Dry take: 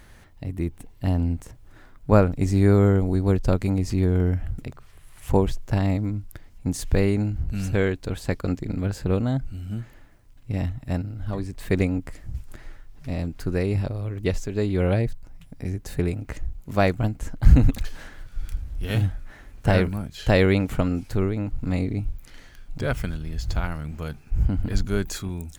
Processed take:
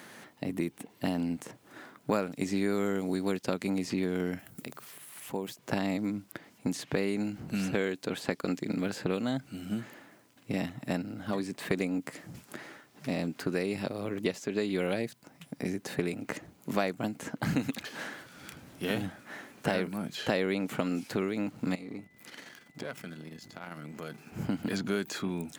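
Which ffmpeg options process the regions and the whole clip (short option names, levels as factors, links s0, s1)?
-filter_complex "[0:a]asettb=1/sr,asplit=3[s0][s1][s2];[s0]atrim=end=4.394[s3];[s1]atrim=start=4.39:end=5.59,asetpts=PTS-STARTPTS,afade=t=in:d=0.004:c=qsin,afade=t=out:st=1.196:d=0.004:c=qsin,aemphasis=mode=production:type=75fm,acompressor=threshold=0.00708:ratio=2:attack=3.2:release=140:knee=1:detection=peak[s4];[s2]atrim=start=5.586[s5];[s3][s4]acrossfade=d=0.004:c1=hsin:c2=qsin[s6];[s6][s5]acrossfade=d=0.004:c1=qsin:c2=hsin,asettb=1/sr,asplit=3[s7][s8][s9];[s7]atrim=end=21.754[s10];[s8]atrim=start=21.75:end=24.18,asetpts=PTS-STARTPTS,afade=t=in:d=0.004:c=qsin,afade=t=out:st=2.426:d=0.004:c=qsin,aeval=exprs='if(lt(val(0),0),0.447*val(0),val(0))':c=same,acompressor=threshold=0.0141:ratio=8:attack=3.2:release=140:knee=1:detection=peak,aeval=exprs='val(0)+0.000447*sin(2*PI*2000*n/s)':c=same[s11];[s9]atrim=start=24.176[s12];[s10][s11]acrossfade=d=0.004:c1=hsin:c2=qsin[s13];[s13][s12]acrossfade=d=0.004:c1=qsin:c2=hsin,highpass=f=180:w=0.5412,highpass=f=180:w=1.3066,acrossover=split=1800|4000[s14][s15][s16];[s14]acompressor=threshold=0.02:ratio=4[s17];[s15]acompressor=threshold=0.00501:ratio=4[s18];[s16]acompressor=threshold=0.00224:ratio=4[s19];[s17][s18][s19]amix=inputs=3:normalize=0,volume=1.78"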